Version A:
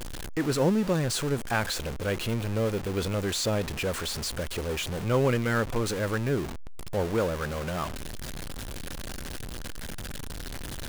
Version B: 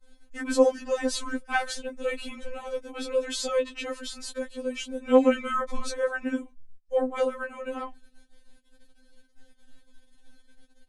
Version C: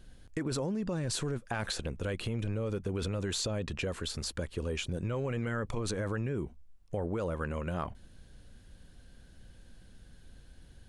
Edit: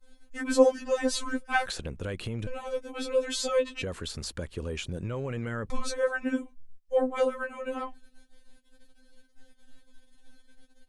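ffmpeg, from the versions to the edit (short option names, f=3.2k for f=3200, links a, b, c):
-filter_complex "[2:a]asplit=2[a][b];[1:a]asplit=3[c][d][e];[c]atrim=end=1.662[f];[a]atrim=start=1.658:end=2.472[g];[d]atrim=start=2.468:end=3.822[h];[b]atrim=start=3.818:end=5.702[i];[e]atrim=start=5.698[j];[f][g]acrossfade=d=0.004:c1=hsin:c2=hsin[k];[k][h]acrossfade=d=0.004:c1=hsin:c2=hsin[l];[l][i]acrossfade=d=0.004:c1=hsin:c2=hsin[m];[m][j]acrossfade=d=0.004:c1=hsin:c2=hsin"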